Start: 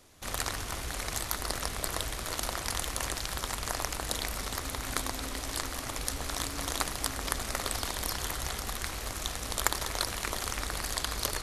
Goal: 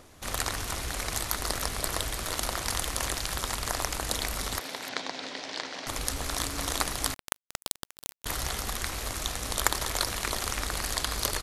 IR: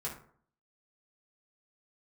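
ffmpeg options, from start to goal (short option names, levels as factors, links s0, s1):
-filter_complex "[0:a]asettb=1/sr,asplit=3[s0][s1][s2];[s0]atrim=end=4.594[s3];[s1]atrim=start=4.59:end=5.87,asetpts=PTS-STARTPTS,afade=t=in:d=0.004:c=qsin,afade=t=out:st=1.276:d=0.004:c=qsin,highpass=f=190:w=0.5412,highpass=f=190:w=1.3066,equalizer=f=230:t=q:w=4:g=-7,equalizer=f=340:t=q:w=4:g=-5,equalizer=f=1200:t=q:w=4:g=-8,lowpass=f=5300:w=0.5412,lowpass=f=5300:w=1.3066[s4];[s2]atrim=start=5.866[s5];[s3][s4]acrossfade=d=0.004:c1=hsin:c2=qsin[s6];[s6][s5]acrossfade=d=0.004:c1=qsin:c2=hsin,acrossover=split=2000[s7][s8];[s7]acompressor=mode=upward:threshold=0.00282:ratio=2.5[s9];[s8]aecho=1:1:300:0.376[s10];[s9][s10]amix=inputs=2:normalize=0,asettb=1/sr,asplit=3[s11][s12][s13];[s11]atrim=end=7.144[s14];[s12]atrim=start=7.14:end=8.26,asetpts=PTS-STARTPTS,afade=t=in:d=0.004:c=qsin,afade=t=out:st=1.116:d=0.004:c=qsin,acrusher=bits=2:mix=0:aa=0.5[s15];[s13]atrim=start=8.256[s16];[s14][s15]acrossfade=d=0.004:c1=hsin:c2=qsin[s17];[s17][s16]acrossfade=d=0.004:c1=qsin:c2=hsin,volume=1.33"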